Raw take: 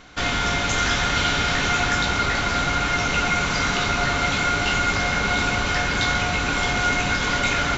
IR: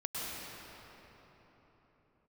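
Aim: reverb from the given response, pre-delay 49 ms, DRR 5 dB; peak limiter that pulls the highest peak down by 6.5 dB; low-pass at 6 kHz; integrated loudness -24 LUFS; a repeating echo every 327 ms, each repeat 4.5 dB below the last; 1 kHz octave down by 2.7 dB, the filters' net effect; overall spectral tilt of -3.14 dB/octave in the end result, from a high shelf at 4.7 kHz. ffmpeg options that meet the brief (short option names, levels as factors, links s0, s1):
-filter_complex "[0:a]lowpass=6000,equalizer=f=1000:t=o:g=-5,highshelf=f=4700:g=5.5,alimiter=limit=0.178:level=0:latency=1,aecho=1:1:327|654|981|1308|1635|1962|2289|2616|2943:0.596|0.357|0.214|0.129|0.0772|0.0463|0.0278|0.0167|0.01,asplit=2[s0][s1];[1:a]atrim=start_sample=2205,adelay=49[s2];[s1][s2]afir=irnorm=-1:irlink=0,volume=0.355[s3];[s0][s3]amix=inputs=2:normalize=0,volume=0.668"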